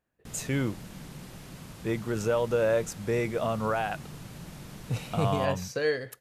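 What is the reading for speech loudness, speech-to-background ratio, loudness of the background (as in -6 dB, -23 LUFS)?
-29.5 LUFS, 15.0 dB, -44.5 LUFS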